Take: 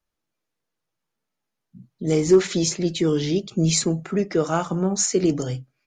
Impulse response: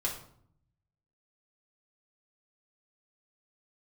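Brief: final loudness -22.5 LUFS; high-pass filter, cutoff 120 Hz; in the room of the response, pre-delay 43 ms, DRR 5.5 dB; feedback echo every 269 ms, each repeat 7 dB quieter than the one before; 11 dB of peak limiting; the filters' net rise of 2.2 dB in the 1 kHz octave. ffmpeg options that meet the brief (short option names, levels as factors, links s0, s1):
-filter_complex "[0:a]highpass=120,equalizer=f=1000:t=o:g=3,alimiter=limit=0.158:level=0:latency=1,aecho=1:1:269|538|807|1076|1345:0.447|0.201|0.0905|0.0407|0.0183,asplit=2[s0][s1];[1:a]atrim=start_sample=2205,adelay=43[s2];[s1][s2]afir=irnorm=-1:irlink=0,volume=0.316[s3];[s0][s3]amix=inputs=2:normalize=0,volume=1.12"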